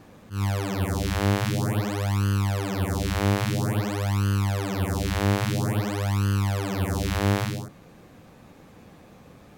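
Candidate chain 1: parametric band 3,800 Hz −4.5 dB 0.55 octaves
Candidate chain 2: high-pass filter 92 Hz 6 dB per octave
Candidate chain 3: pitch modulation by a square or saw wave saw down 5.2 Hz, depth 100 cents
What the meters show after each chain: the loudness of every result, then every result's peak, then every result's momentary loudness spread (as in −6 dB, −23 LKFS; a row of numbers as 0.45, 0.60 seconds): −26.0, −27.0, −25.5 LKFS; −10.5, −9.5, −10.5 dBFS; 3, 3, 3 LU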